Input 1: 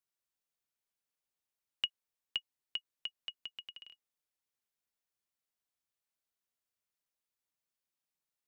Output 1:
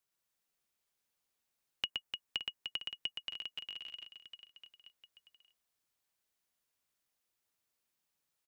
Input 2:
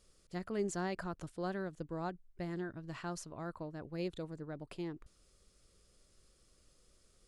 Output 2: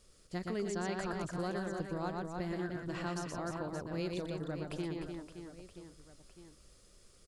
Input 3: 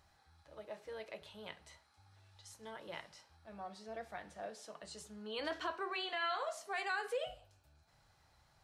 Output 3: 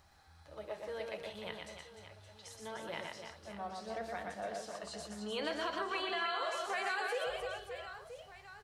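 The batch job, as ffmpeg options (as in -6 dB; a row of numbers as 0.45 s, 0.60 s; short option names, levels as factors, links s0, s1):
-filter_complex "[0:a]aecho=1:1:120|300|570|975|1582:0.631|0.398|0.251|0.158|0.1,acrossover=split=2400|5400[s0][s1][s2];[s0]acompressor=threshold=0.0126:ratio=4[s3];[s1]acompressor=threshold=0.00355:ratio=4[s4];[s2]acompressor=threshold=0.00126:ratio=4[s5];[s3][s4][s5]amix=inputs=3:normalize=0,volume=1.58"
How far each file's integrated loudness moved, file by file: +0.5 LU, +3.0 LU, +3.0 LU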